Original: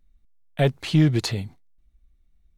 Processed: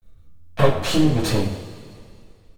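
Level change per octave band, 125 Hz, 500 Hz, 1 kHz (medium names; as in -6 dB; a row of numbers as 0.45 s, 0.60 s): -0.5 dB, +5.5 dB, +9.0 dB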